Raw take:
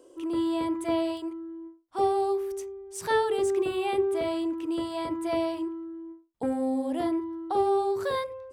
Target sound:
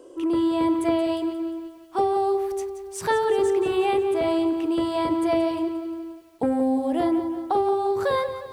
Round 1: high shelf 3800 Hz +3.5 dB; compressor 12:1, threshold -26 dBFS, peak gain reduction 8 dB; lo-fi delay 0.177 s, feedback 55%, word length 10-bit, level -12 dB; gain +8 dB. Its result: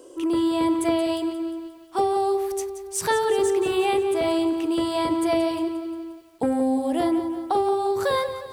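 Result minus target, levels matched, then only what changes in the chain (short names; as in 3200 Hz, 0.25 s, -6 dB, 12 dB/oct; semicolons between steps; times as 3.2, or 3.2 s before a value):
8000 Hz band +7.5 dB
change: high shelf 3800 Hz -6 dB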